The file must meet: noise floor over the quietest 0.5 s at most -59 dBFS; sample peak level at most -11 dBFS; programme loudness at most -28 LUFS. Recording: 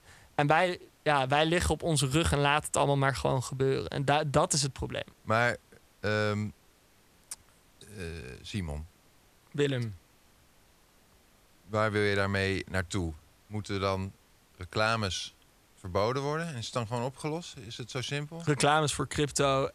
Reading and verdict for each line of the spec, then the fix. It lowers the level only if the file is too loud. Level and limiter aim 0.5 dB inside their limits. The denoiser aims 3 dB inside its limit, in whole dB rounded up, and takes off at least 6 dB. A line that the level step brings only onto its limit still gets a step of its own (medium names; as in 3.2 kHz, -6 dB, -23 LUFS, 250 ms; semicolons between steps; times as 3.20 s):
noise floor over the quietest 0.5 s -63 dBFS: pass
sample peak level -9.5 dBFS: fail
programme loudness -30.0 LUFS: pass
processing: peak limiter -11.5 dBFS